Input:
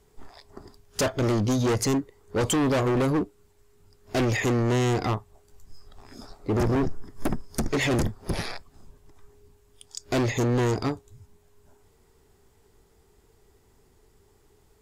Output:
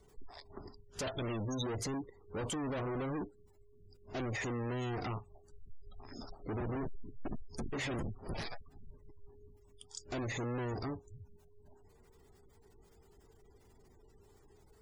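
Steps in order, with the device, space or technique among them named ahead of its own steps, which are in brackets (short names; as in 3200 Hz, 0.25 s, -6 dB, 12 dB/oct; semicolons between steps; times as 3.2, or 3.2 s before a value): compact cassette (soft clip -34 dBFS, distortion -8 dB; LPF 11000 Hz 12 dB/oct; wow and flutter 16 cents; white noise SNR 29 dB); spectral gate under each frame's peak -25 dB strong; 1.07–1.64 band shelf 4400 Hz +14 dB; gain -2 dB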